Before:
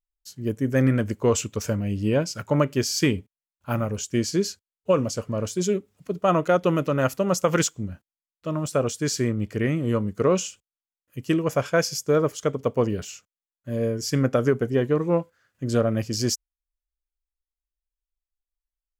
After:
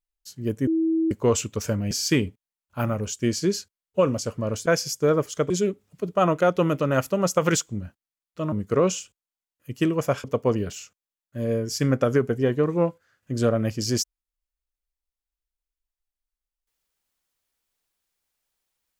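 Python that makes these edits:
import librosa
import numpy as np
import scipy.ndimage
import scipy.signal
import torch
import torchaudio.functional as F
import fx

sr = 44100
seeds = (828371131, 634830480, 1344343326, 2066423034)

y = fx.edit(x, sr, fx.bleep(start_s=0.67, length_s=0.44, hz=324.0, db=-19.0),
    fx.cut(start_s=1.91, length_s=0.91),
    fx.cut(start_s=8.59, length_s=1.41),
    fx.move(start_s=11.72, length_s=0.84, to_s=5.57), tone=tone)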